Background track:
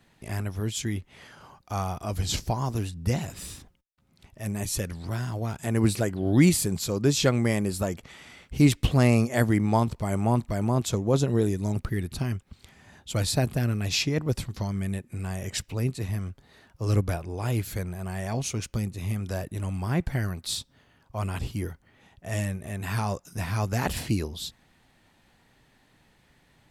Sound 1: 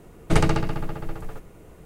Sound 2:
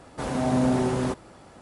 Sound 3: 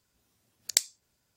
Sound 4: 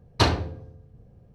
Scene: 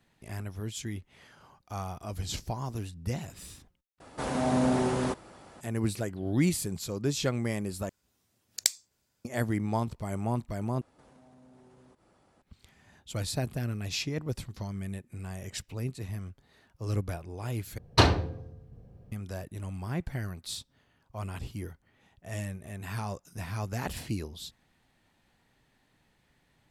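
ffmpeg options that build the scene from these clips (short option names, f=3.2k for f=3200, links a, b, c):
-filter_complex "[2:a]asplit=2[a][b];[0:a]volume=-7dB[c];[a]lowshelf=f=410:g=-3.5[d];[b]acompressor=threshold=-40dB:ratio=6:attack=3.2:release=140:knee=1:detection=peak[e];[c]asplit=5[f][g][h][i][j];[f]atrim=end=4.004[k];[d]atrim=end=1.61,asetpts=PTS-STARTPTS,volume=-1dB[l];[g]atrim=start=5.606:end=7.894[m];[3:a]atrim=end=1.36,asetpts=PTS-STARTPTS,volume=-1.5dB[n];[h]atrim=start=9.246:end=10.814[o];[e]atrim=end=1.61,asetpts=PTS-STARTPTS,volume=-16dB[p];[i]atrim=start=12.416:end=17.784[q];[4:a]atrim=end=1.34[r];[j]atrim=start=19.116[s];[k][l]acrossfade=d=0.004:c1=hsin:c2=hsin[t];[t][m]acrossfade=d=0.004:c1=hsin:c2=hsin[u];[u][n]acrossfade=d=0.004:c1=hsin:c2=hsin[v];[v][o]acrossfade=d=0.004:c1=hsin:c2=hsin[w];[w][p]acrossfade=d=0.004:c1=hsin:c2=hsin[x];[x][q]acrossfade=d=0.004:c1=hsin:c2=hsin[y];[y][r]acrossfade=d=0.004:c1=hsin:c2=hsin[z];[z][s]acrossfade=d=0.004:c1=hsin:c2=hsin"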